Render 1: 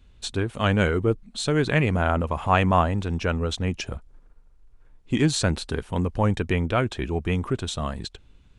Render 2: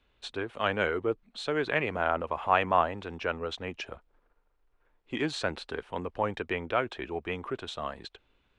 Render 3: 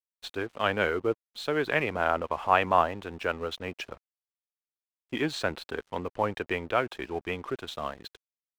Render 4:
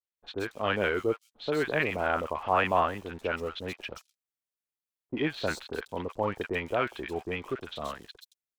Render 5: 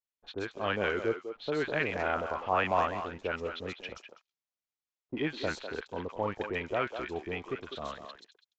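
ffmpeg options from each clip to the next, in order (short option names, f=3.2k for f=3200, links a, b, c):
-filter_complex "[0:a]acrossover=split=340 4000:gain=0.158 1 0.141[a][b][c];[a][b][c]amix=inputs=3:normalize=0,volume=-3dB"
-af "aeval=exprs='sgn(val(0))*max(abs(val(0))-0.00282,0)':c=same,volume=2dB"
-filter_complex "[0:a]acrossover=split=1000|4600[a][b][c];[b]adelay=40[d];[c]adelay=170[e];[a][d][e]amix=inputs=3:normalize=0"
-filter_complex "[0:a]asplit=2[a][b];[b]adelay=200,highpass=300,lowpass=3.4k,asoftclip=type=hard:threshold=-19.5dB,volume=-8dB[c];[a][c]amix=inputs=2:normalize=0,aresample=16000,aresample=44100,volume=-3dB"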